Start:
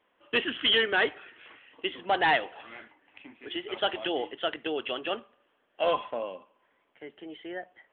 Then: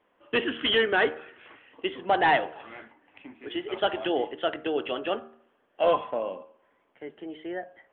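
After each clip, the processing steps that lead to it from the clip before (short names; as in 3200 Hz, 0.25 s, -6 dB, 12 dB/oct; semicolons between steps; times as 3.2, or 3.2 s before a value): high shelf 2200 Hz -11 dB; de-hum 77.81 Hz, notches 22; gain +5 dB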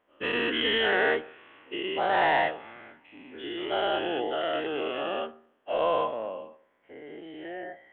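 spectral dilation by 0.24 s; gain -8.5 dB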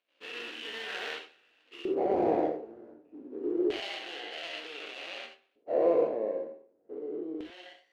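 median filter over 41 samples; LFO band-pass square 0.27 Hz 400–3000 Hz; non-linear reverb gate 0.11 s flat, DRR 4 dB; gain +8 dB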